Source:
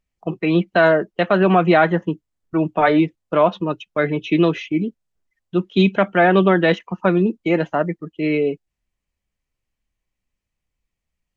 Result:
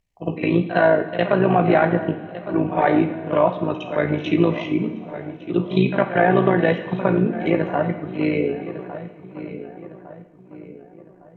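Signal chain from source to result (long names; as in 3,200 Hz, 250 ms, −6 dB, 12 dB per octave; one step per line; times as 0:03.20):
notch filter 1,300 Hz, Q 6.7
on a send: feedback echo with a low-pass in the loop 1,155 ms, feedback 44%, low-pass 1,800 Hz, level −16.5 dB
on the sum: treble cut that deepens with the level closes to 2,300 Hz, closed at −13.5 dBFS
amplitude modulation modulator 57 Hz, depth 65%
echo ahead of the sound 59 ms −12.5 dB
coupled-rooms reverb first 0.71 s, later 3 s, from −18 dB, DRR 6 dB
in parallel at 0 dB: downward compressor, threshold −29 dBFS, peak gain reduction 16 dB
on the sum: level −1 dB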